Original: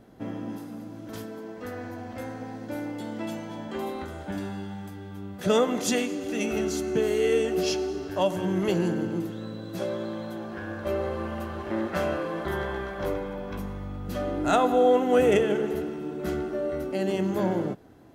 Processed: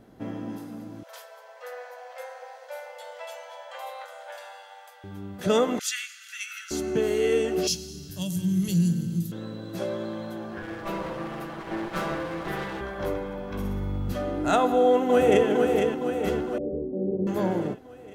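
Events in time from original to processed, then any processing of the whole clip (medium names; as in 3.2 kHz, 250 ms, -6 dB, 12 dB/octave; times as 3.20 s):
1.03–5.04 s: Chebyshev high-pass 490 Hz, order 8
5.79–6.71 s: steep high-pass 1.3 kHz 96 dB/octave
7.67–9.32 s: FFT filter 110 Hz 0 dB, 170 Hz +9 dB, 270 Hz -11 dB, 790 Hz -23 dB, 2.3 kHz -10 dB, 3.9 kHz +3 dB, 11 kHz +12 dB
10.62–12.81 s: comb filter that takes the minimum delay 6.1 ms
13.48–14.13 s: flutter echo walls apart 10.5 m, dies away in 0.77 s
14.63–15.48 s: echo throw 460 ms, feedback 60%, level -4.5 dB
16.58–17.27 s: inverse Chebyshev low-pass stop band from 2.9 kHz, stop band 80 dB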